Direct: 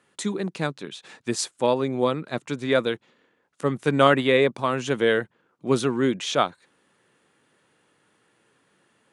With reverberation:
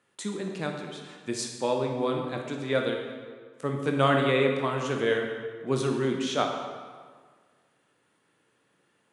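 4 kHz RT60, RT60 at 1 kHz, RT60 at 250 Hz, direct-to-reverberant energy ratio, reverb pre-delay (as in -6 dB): 1.2 s, 1.7 s, 1.6 s, 2.0 dB, 17 ms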